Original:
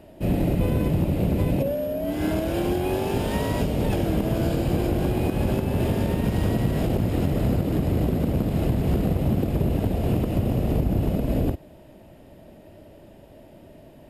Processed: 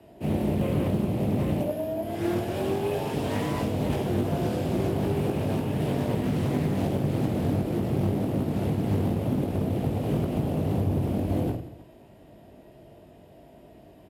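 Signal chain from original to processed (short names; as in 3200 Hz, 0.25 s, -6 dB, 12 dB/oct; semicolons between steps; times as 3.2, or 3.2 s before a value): frequency shift +36 Hz; reverse bouncing-ball echo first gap 20 ms, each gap 1.6×, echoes 5; Doppler distortion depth 0.43 ms; gain -5.5 dB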